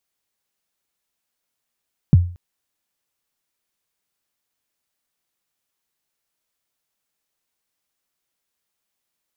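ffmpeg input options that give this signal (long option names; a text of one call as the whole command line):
ffmpeg -f lavfi -i "aevalsrc='0.631*pow(10,-3*t/0.4)*sin(2*PI*(190*0.026/log(88/190)*(exp(log(88/190)*min(t,0.026)/0.026)-1)+88*max(t-0.026,0)))':duration=0.23:sample_rate=44100" out.wav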